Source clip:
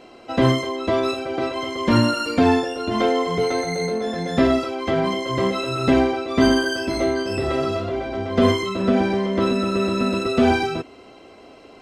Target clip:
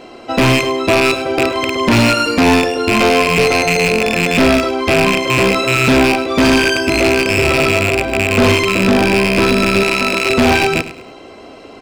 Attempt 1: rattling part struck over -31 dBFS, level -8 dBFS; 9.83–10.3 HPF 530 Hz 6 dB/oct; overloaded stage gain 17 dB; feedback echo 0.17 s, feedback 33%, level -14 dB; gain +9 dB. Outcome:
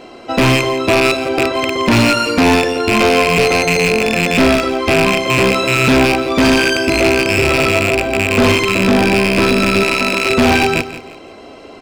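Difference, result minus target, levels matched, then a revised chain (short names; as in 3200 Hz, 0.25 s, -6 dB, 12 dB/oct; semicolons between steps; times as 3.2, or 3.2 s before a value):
echo 66 ms late
rattling part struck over -31 dBFS, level -8 dBFS; 9.83–10.3 HPF 530 Hz 6 dB/oct; overloaded stage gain 17 dB; feedback echo 0.104 s, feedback 33%, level -14 dB; gain +9 dB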